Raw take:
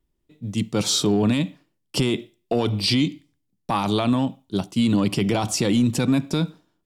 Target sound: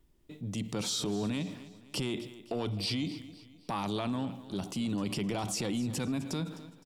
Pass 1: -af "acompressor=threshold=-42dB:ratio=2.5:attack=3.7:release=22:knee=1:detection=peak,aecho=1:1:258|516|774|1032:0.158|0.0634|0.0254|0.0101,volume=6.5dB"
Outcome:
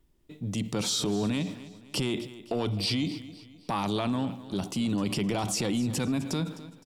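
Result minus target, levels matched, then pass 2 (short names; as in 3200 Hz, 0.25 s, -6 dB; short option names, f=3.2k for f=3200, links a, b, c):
compressor: peak gain reduction -4.5 dB
-af "acompressor=threshold=-49.5dB:ratio=2.5:attack=3.7:release=22:knee=1:detection=peak,aecho=1:1:258|516|774|1032:0.158|0.0634|0.0254|0.0101,volume=6.5dB"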